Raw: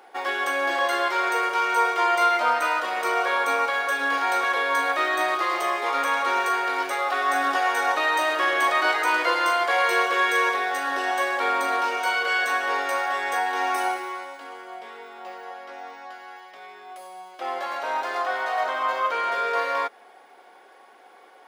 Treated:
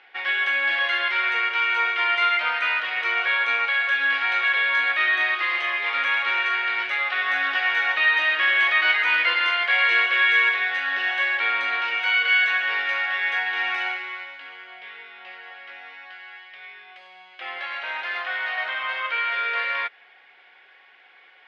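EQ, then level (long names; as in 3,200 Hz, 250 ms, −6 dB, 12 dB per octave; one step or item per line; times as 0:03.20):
low-pass filter 2,900 Hz 24 dB per octave
tilt shelving filter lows −7 dB, about 1,400 Hz
flat-topped bell 510 Hz −12.5 dB 3 octaves
+6.0 dB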